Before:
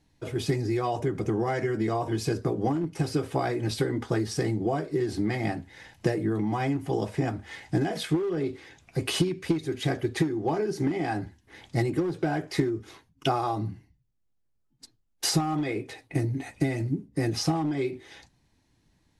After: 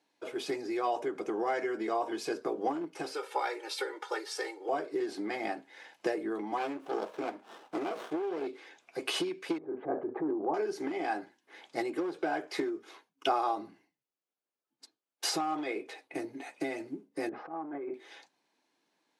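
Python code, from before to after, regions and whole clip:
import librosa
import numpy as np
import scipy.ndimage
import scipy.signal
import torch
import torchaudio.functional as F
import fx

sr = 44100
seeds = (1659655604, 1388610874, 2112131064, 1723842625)

y = fx.chain(x, sr, fx.highpass(hz=680.0, slope=12),
    fx.comb(ms=2.2, depth=0.97), at=(3.14, 4.69))
y = fx.chain(y, sr, fx.highpass(hz=170.0, slope=6),
    fx.running_max(window=17), at=(6.57, 8.47))
y = fx.chain(y, sr, fx.lowpass(hz=1100.0, slope=24),
    fx.low_shelf(hz=180.0, db=6.5),
    fx.transient(attack_db=-5, sustain_db=7), at=(9.58, 10.54))
y = fx.chain(y, sr, fx.lowpass(hz=1600.0, slope=24),
    fx.over_compress(threshold_db=-32.0, ratio=-1.0), at=(17.29, 17.94))
y = scipy.signal.sosfilt(scipy.signal.bessel(4, 470.0, 'highpass', norm='mag', fs=sr, output='sos'), y)
y = fx.high_shelf(y, sr, hz=4400.0, db=-9.0)
y = fx.notch(y, sr, hz=1900.0, q=13.0)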